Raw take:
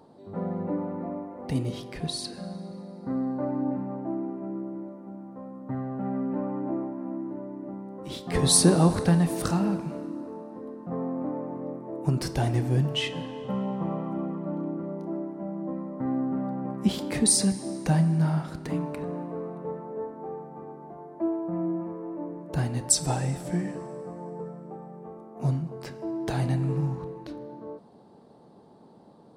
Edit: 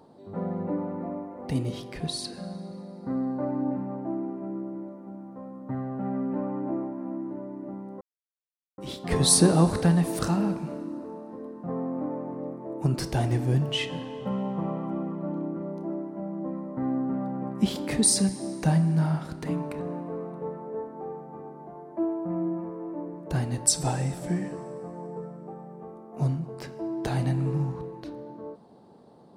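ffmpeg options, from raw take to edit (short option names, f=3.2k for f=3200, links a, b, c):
-filter_complex "[0:a]asplit=2[a][b];[a]atrim=end=8.01,asetpts=PTS-STARTPTS,afade=t=out:st=8.006:d=0.004:c=hsin,apad=pad_dur=0.77[c];[b]atrim=start=8.01,asetpts=PTS-STARTPTS,afade=t=in:d=0.004:c=hsin[d];[c][d]concat=n=2:v=0:a=1"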